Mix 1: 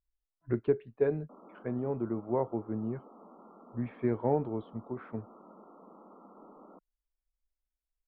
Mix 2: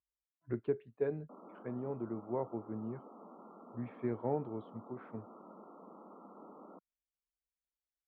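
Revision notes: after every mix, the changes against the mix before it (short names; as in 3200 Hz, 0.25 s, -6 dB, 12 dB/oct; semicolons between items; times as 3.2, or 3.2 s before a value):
speech -6.5 dB; master: add HPF 73 Hz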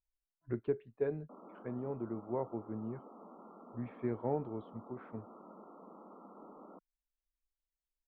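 master: remove HPF 73 Hz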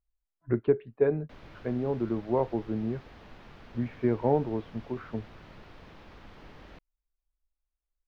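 speech +10.0 dB; background: remove brick-wall FIR band-pass 180–1400 Hz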